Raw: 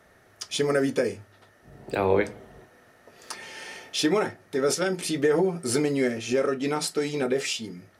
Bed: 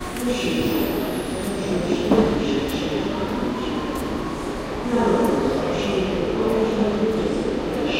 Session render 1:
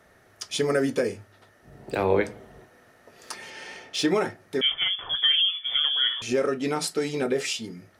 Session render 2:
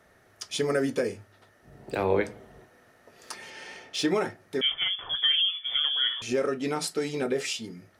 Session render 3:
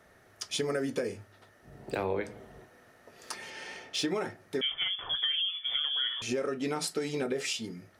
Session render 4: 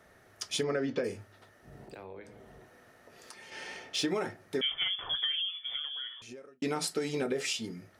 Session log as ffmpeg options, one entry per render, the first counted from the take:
-filter_complex "[0:a]asettb=1/sr,asplit=3[s0][s1][s2];[s0]atrim=end=0.904[s3];[s1]atrim=start=0.9:end=2.04,asetpts=PTS-STARTPTS,afade=t=in:d=0.004:c=qsin,afade=t=out:st=1.136:d=0.004:c=qsin,asoftclip=type=hard:threshold=0.158[s4];[s2]atrim=start=2.036[s5];[s3][s4]acrossfade=d=0.004:c1=hsin:c2=qsin[s6];[s6][s5]acrossfade=d=0.004:c1=qsin:c2=hsin,asettb=1/sr,asplit=3[s7][s8][s9];[s7]atrim=end=3.504[s10];[s8]atrim=start=3.5:end=4.08,asetpts=PTS-STARTPTS,afade=t=in:d=0.004:c=qsin,afade=t=out:st=0.576:d=0.004:c=qsin,adynamicsmooth=sensitivity=7:basefreq=7500[s11];[s9]atrim=start=4.076[s12];[s10][s11]acrossfade=d=0.004:c1=hsin:c2=qsin[s13];[s13][s12]acrossfade=d=0.004:c1=qsin:c2=hsin,asettb=1/sr,asplit=3[s14][s15][s16];[s14]atrim=end=4.614[s17];[s15]atrim=start=4.61:end=6.22,asetpts=PTS-STARTPTS,afade=t=in:d=0.004:c=qsin,afade=t=out:st=1.606:d=0.004:c=qsin,lowpass=f=3100:t=q:w=0.5098,lowpass=f=3100:t=q:w=0.6013,lowpass=f=3100:t=q:w=0.9,lowpass=f=3100:t=q:w=2.563,afreqshift=-3600[s18];[s16]atrim=start=6.216[s19];[s17][s18]acrossfade=d=0.004:c1=hsin:c2=qsin[s20];[s20][s19]acrossfade=d=0.004:c1=qsin:c2=hsin"
-af "volume=0.75"
-af "acompressor=threshold=0.0398:ratio=5"
-filter_complex "[0:a]asettb=1/sr,asplit=3[s0][s1][s2];[s0]atrim=end=0.634[s3];[s1]atrim=start=0.63:end=1.04,asetpts=PTS-STARTPTS,afade=t=in:d=0.004:c=qsin,afade=t=out:st=0.406:d=0.004:c=qsin,lowpass=f=4800:w=0.5412,lowpass=f=4800:w=1.3066[s4];[s2]atrim=start=1.036[s5];[s3][s4]acrossfade=d=0.004:c1=hsin:c2=qsin[s6];[s6][s5]acrossfade=d=0.004:c1=qsin:c2=hsin,asettb=1/sr,asplit=3[s7][s8][s9];[s7]atrim=end=1.844[s10];[s8]atrim=start=1.84:end=3.52,asetpts=PTS-STARTPTS,afade=t=in:d=0.004:c=qsin,afade=t=out:st=1.676:d=0.004:c=qsin,acompressor=threshold=0.00316:ratio=2.5:attack=3.2:release=140:knee=1:detection=peak[s11];[s9]atrim=start=3.516[s12];[s10][s11]acrossfade=d=0.004:c1=hsin:c2=qsin[s13];[s13][s12]acrossfade=d=0.004:c1=qsin:c2=hsin,asplit=2[s14][s15];[s14]atrim=end=6.62,asetpts=PTS-STARTPTS,afade=t=out:st=4.99:d=1.63[s16];[s15]atrim=start=6.62,asetpts=PTS-STARTPTS,afade=t=in:d=0.004:c=hsin[s17];[s16][s17]concat=n=2:v=0:a=1"

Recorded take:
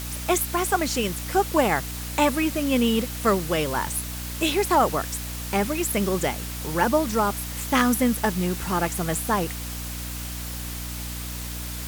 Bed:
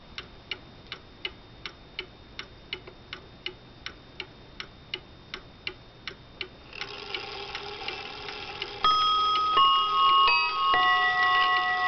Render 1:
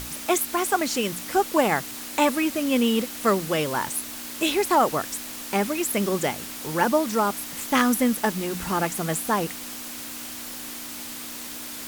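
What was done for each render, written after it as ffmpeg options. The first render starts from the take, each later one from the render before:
-af "bandreject=f=60:t=h:w=6,bandreject=f=120:t=h:w=6,bandreject=f=180:t=h:w=6"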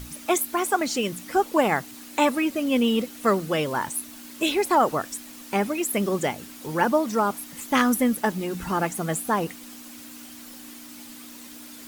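-af "afftdn=nr=9:nf=-36"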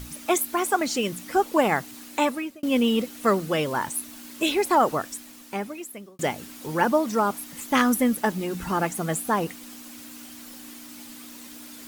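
-filter_complex "[0:a]asplit=3[s0][s1][s2];[s0]atrim=end=2.63,asetpts=PTS-STARTPTS,afade=t=out:st=1.93:d=0.7:c=qsin[s3];[s1]atrim=start=2.63:end=6.19,asetpts=PTS-STARTPTS,afade=t=in:d=0.004:c=hsin,afade=t=out:st=2.28:d=1.28[s4];[s2]atrim=start=6.19,asetpts=PTS-STARTPTS,afade=t=in:d=0.004:c=hsin[s5];[s3][s4][s5]concat=n=3:v=0:a=1"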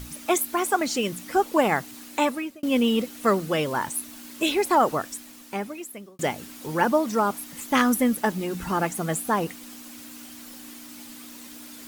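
-af anull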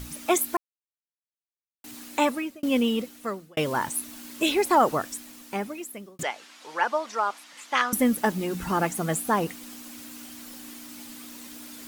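-filter_complex "[0:a]asettb=1/sr,asplit=3[s0][s1][s2];[s0]atrim=end=6.234[s3];[s1]atrim=start=6.23:end=7.93,asetpts=PTS-STARTPTS,afade=t=in:d=0.004:c=qsin,afade=t=out:st=1.696:d=0.004:c=qsin,highpass=770,lowpass=5300[s4];[s2]atrim=start=7.926[s5];[s3][s4]acrossfade=d=0.004:c1=hsin:c2=qsin[s6];[s6][s5]acrossfade=d=0.004:c1=qsin:c2=hsin,asplit=4[s7][s8][s9][s10];[s7]atrim=end=0.57,asetpts=PTS-STARTPTS,afade=t=out:st=0.566:d=0.004:c=hsin[s11];[s8]atrim=start=0.57:end=1.84,asetpts=PTS-STARTPTS,volume=0[s12];[s9]atrim=start=1.84:end=3.57,asetpts=PTS-STARTPTS,afade=t=in:d=0.004:c=hsin,afade=t=out:st=0.8:d=0.93[s13];[s10]atrim=start=3.57,asetpts=PTS-STARTPTS,afade=t=in:d=0.004:c=hsin[s14];[s11][s12][s13][s14]concat=n=4:v=0:a=1"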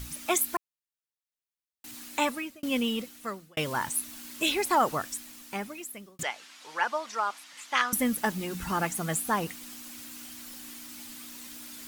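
-af "equalizer=f=400:t=o:w=2.6:g=-7"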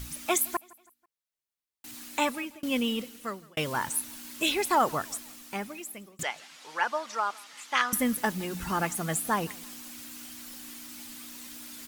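-af "aecho=1:1:163|326|489:0.0631|0.0271|0.0117"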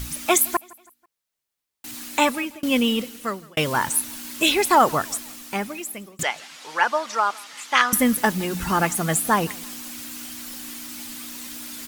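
-af "volume=2.51"

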